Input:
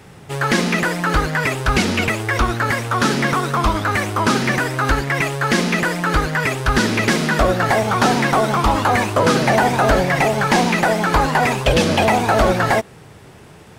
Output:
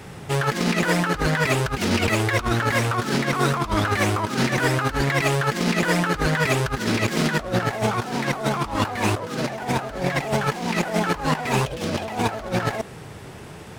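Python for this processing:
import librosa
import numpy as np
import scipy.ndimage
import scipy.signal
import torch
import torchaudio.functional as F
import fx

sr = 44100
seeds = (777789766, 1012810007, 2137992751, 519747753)

y = fx.self_delay(x, sr, depth_ms=0.078)
y = fx.over_compress(y, sr, threshold_db=-21.0, ratio=-0.5)
y = y * librosa.db_to_amplitude(-1.0)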